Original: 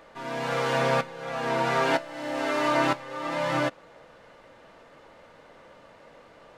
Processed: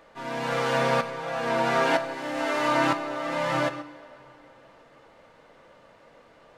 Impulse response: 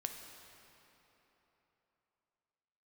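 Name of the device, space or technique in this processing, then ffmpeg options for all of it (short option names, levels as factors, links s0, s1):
keyed gated reverb: -filter_complex "[0:a]asplit=3[s0][s1][s2];[1:a]atrim=start_sample=2205[s3];[s1][s3]afir=irnorm=-1:irlink=0[s4];[s2]apad=whole_len=290167[s5];[s4][s5]sidechaingate=range=0.447:threshold=0.00891:ratio=16:detection=peak,volume=1.58[s6];[s0][s6]amix=inputs=2:normalize=0,volume=0.473"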